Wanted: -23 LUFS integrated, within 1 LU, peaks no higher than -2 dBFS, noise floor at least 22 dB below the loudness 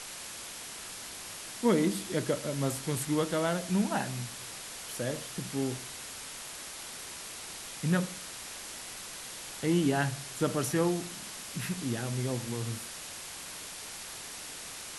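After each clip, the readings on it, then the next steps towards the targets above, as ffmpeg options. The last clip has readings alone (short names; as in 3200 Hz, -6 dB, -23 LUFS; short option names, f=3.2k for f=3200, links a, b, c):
noise floor -43 dBFS; noise floor target -56 dBFS; loudness -33.5 LUFS; peak -14.5 dBFS; loudness target -23.0 LUFS
-> -af "afftdn=nr=13:nf=-43"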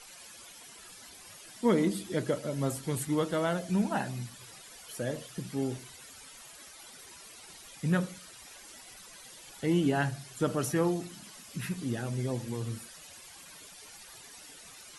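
noise floor -51 dBFS; noise floor target -54 dBFS
-> -af "afftdn=nr=6:nf=-51"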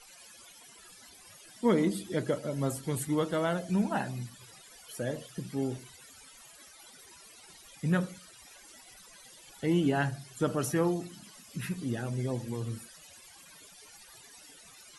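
noise floor -54 dBFS; loudness -32.0 LUFS; peak -15.0 dBFS; loudness target -23.0 LUFS
-> -af "volume=9dB"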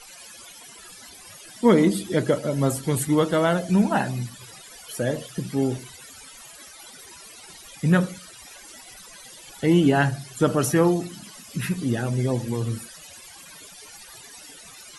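loudness -23.0 LUFS; peak -6.0 dBFS; noise floor -45 dBFS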